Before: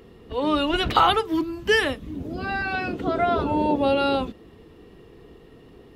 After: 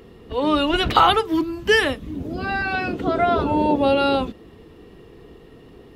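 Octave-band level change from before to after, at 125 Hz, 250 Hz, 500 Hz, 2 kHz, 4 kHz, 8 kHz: +3.0, +3.0, +3.0, +3.0, +3.0, +3.0 decibels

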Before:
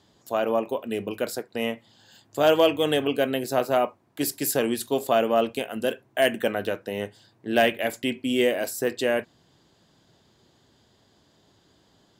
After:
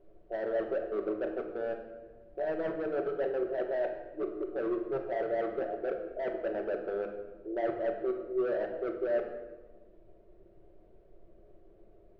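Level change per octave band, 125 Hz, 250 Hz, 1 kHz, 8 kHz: −15.0 dB, −10.0 dB, −12.5 dB, below −40 dB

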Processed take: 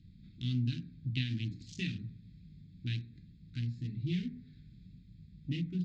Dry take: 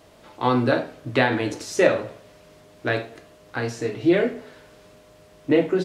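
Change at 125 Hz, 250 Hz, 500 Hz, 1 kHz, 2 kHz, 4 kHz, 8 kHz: −2.5 dB, −14.0 dB, −34.5 dB, below −40 dB, −21.0 dB, −9.5 dB, below −20 dB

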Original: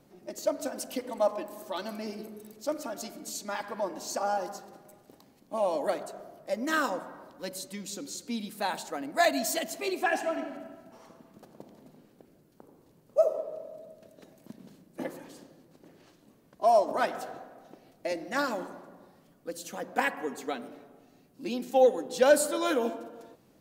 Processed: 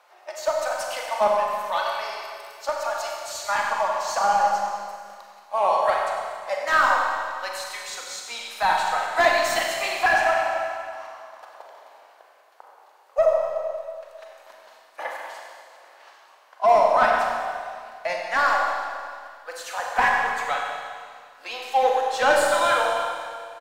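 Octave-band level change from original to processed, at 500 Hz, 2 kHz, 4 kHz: +4.5, +11.5, +8.0 decibels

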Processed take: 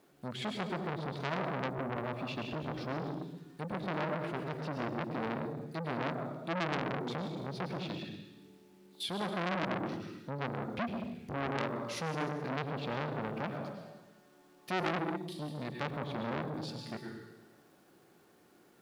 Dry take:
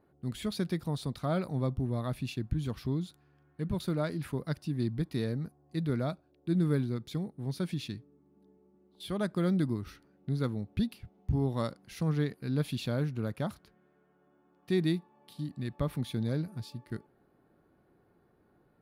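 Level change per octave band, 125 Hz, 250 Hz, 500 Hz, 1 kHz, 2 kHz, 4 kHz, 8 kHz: −8.5, −5.5, −1.0, +7.5, +6.5, +1.0, −2.5 decibels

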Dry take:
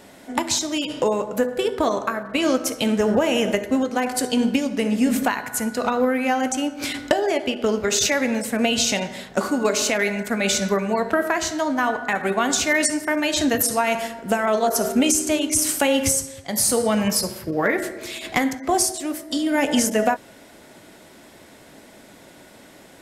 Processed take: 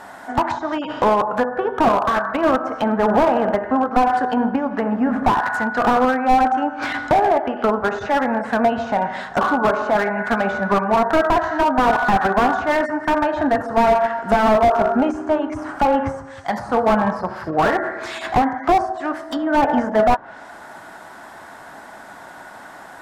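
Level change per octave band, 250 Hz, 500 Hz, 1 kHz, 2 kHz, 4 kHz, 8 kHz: +1.0 dB, +3.5 dB, +9.5 dB, +2.0 dB, −8.5 dB, below −20 dB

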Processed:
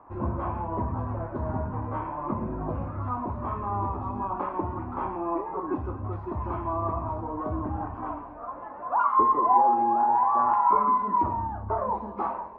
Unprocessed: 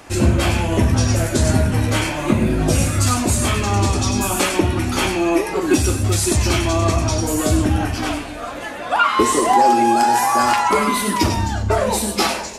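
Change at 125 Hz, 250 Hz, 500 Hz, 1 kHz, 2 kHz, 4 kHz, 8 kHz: −15.0 dB, −14.5 dB, −13.0 dB, −5.0 dB, −22.0 dB, below −40 dB, below −40 dB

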